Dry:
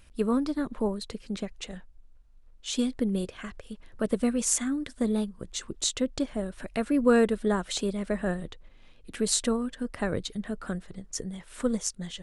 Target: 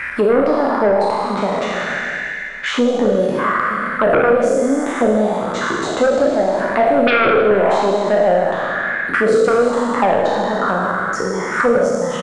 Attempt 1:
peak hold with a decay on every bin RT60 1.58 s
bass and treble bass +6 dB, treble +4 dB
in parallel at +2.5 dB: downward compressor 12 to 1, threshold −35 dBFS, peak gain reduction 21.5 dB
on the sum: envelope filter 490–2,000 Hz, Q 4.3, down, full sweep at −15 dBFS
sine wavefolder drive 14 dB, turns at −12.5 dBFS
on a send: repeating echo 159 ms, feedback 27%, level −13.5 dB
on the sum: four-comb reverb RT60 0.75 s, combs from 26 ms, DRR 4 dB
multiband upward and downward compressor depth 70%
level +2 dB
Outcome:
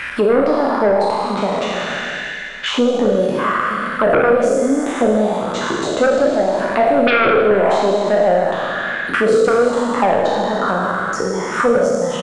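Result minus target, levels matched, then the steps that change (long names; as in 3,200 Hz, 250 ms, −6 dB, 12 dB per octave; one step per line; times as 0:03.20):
4,000 Hz band +3.0 dB
add after downward compressor: high shelf with overshoot 3,200 Hz −13.5 dB, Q 3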